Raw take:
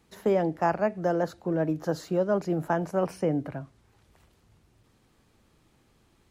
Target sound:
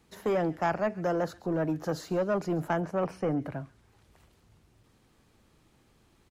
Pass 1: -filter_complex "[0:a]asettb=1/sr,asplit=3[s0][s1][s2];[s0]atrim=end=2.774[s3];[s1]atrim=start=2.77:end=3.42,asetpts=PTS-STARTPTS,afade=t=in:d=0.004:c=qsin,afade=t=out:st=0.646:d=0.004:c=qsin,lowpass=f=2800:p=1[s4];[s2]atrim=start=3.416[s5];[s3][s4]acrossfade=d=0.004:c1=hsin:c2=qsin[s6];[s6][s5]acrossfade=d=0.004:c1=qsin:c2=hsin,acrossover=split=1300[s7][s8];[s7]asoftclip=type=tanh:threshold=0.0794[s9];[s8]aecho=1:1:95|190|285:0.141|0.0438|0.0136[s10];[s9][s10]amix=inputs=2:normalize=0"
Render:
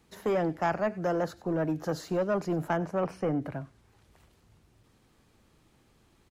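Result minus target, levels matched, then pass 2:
echo 41 ms early
-filter_complex "[0:a]asettb=1/sr,asplit=3[s0][s1][s2];[s0]atrim=end=2.774[s3];[s1]atrim=start=2.77:end=3.42,asetpts=PTS-STARTPTS,afade=t=in:d=0.004:c=qsin,afade=t=out:st=0.646:d=0.004:c=qsin,lowpass=f=2800:p=1[s4];[s2]atrim=start=3.416[s5];[s3][s4]acrossfade=d=0.004:c1=hsin:c2=qsin[s6];[s6][s5]acrossfade=d=0.004:c1=qsin:c2=hsin,acrossover=split=1300[s7][s8];[s7]asoftclip=type=tanh:threshold=0.0794[s9];[s8]aecho=1:1:136|272|408:0.141|0.0438|0.0136[s10];[s9][s10]amix=inputs=2:normalize=0"

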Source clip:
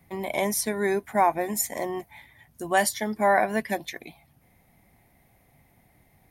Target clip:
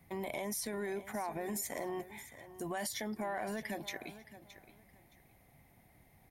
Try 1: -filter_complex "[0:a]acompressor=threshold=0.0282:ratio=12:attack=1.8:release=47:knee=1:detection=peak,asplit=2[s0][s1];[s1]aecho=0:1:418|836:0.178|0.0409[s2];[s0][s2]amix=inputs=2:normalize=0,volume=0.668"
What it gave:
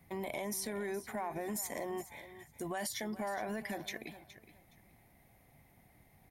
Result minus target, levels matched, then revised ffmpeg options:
echo 201 ms early
-filter_complex "[0:a]acompressor=threshold=0.0282:ratio=12:attack=1.8:release=47:knee=1:detection=peak,asplit=2[s0][s1];[s1]aecho=0:1:619|1238:0.178|0.0409[s2];[s0][s2]amix=inputs=2:normalize=0,volume=0.668"

